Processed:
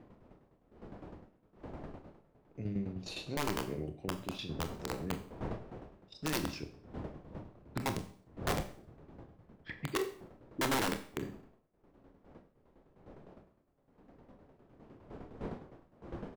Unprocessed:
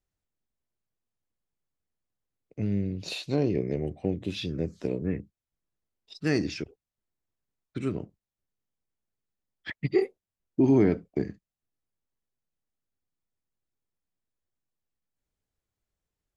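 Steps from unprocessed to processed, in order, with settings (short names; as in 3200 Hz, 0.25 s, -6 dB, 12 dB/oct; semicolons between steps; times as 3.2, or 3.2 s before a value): wind noise 450 Hz -41 dBFS; 6.4–9.78 bell 100 Hz +6.5 dB 1.8 oct; tremolo saw down 9.8 Hz, depth 75%; wrapped overs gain 20.5 dB; doubler 26 ms -12 dB; Schroeder reverb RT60 0.49 s, combs from 29 ms, DRR 9 dB; gain -5.5 dB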